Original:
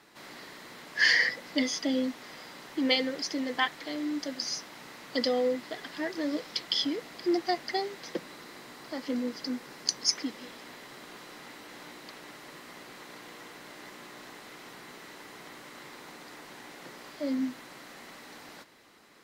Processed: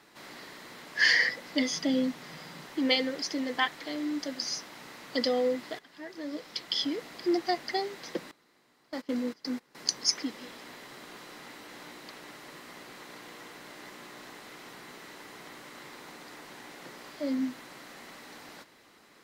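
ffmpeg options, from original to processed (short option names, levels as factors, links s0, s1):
-filter_complex "[0:a]asettb=1/sr,asplit=3[s0][s1][s2];[s0]atrim=end=1.704[s3];[s1]atrim=start=1.7:end=2.65,asetpts=PTS-STARTPTS,afade=t=in:d=0.004:c=qsin,afade=t=out:st=0.946:d=0.004:c=qsin,equalizer=f=160:w=3.2:g=14.5[s4];[s2]atrim=start=2.646[s5];[s3][s4]acrossfade=d=0.004:c1=hsin:c2=qsin[s6];[s6][s5]acrossfade=d=0.004:c1=qsin:c2=hsin,asettb=1/sr,asplit=3[s7][s8][s9];[s7]atrim=end=8.314[s10];[s8]atrim=start=8.31:end=9.75,asetpts=PTS-STARTPTS,afade=t=in:d=0.004:c=qsin,afade=t=out:st=1.436:d=0.004:c=qsin,agate=range=0.112:threshold=0.0112:ratio=16:release=100:detection=peak[s11];[s9]atrim=start=9.746[s12];[s10][s11]acrossfade=d=0.004:c1=hsin:c2=qsin[s13];[s13][s12]acrossfade=d=0.004:c1=qsin:c2=hsin,asplit=2[s14][s15];[s14]atrim=end=5.79,asetpts=PTS-STARTPTS,afade=t=out:st=5.786:d=0.004:c=hsin:silence=0.149624[s16];[s15]atrim=start=5.79,asetpts=PTS-STARTPTS,afade=t=in:d=1.22:silence=0.149624[s17];[s16][s17]concat=n=2:v=0:a=1"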